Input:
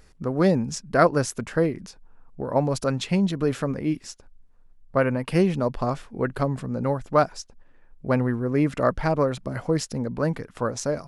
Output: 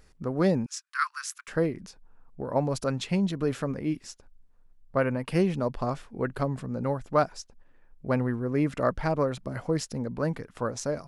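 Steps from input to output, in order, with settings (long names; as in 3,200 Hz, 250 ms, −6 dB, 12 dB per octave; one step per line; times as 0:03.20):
0:00.66–0:01.48: Butterworth high-pass 1,100 Hz 72 dB per octave
level −4 dB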